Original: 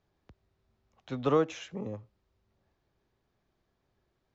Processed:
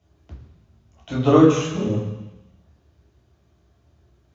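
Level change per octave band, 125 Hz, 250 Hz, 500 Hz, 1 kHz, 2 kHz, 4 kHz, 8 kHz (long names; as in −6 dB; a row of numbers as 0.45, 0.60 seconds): +17.0 dB, +17.0 dB, +11.0 dB, +10.5 dB, +10.0 dB, +11.5 dB, can't be measured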